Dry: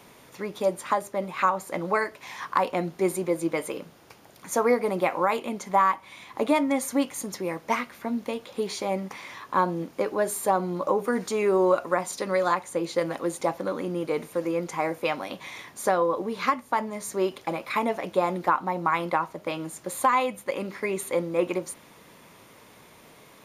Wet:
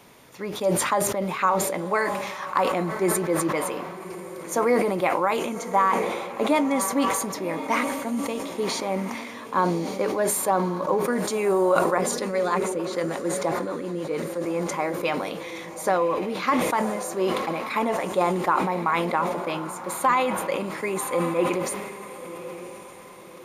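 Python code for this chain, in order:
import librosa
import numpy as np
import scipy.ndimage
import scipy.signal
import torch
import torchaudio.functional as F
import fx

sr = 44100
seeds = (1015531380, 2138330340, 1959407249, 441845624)

y = fx.echo_diffused(x, sr, ms=1122, feedback_pct=40, wet_db=-11.5)
y = fx.rotary(y, sr, hz=6.7, at=(11.98, 14.46))
y = fx.sustainer(y, sr, db_per_s=36.0)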